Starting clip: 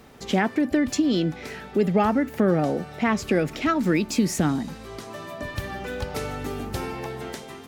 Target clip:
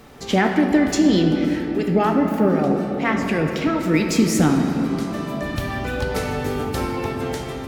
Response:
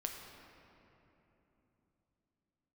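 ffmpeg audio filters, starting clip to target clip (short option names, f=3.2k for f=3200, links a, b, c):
-filter_complex "[0:a]asettb=1/sr,asplit=3[a][b][c];[a]atrim=end=1.454[d];[b]atrim=start=1.45:end=3.94,asetpts=PTS-STARTPTS,afade=t=in:d=0.004:c=qsin,afade=t=out:st=2.486:d=0.004:c=qsin,acrossover=split=750[e][f];[e]aeval=exprs='val(0)*(1-0.7/2+0.7/2*cos(2*PI*4*n/s))':c=same[g];[f]aeval=exprs='val(0)*(1-0.7/2-0.7/2*cos(2*PI*4*n/s))':c=same[h];[g][h]amix=inputs=2:normalize=0[i];[c]atrim=start=3.936[j];[d][i]acrossfade=d=0.004:c1=hsin:c2=qsin[k];[k][j]acrossfade=d=0.004:c1=qsin:c2=hsin[l];[1:a]atrim=start_sample=2205[m];[l][m]afir=irnorm=-1:irlink=0,volume=6dB"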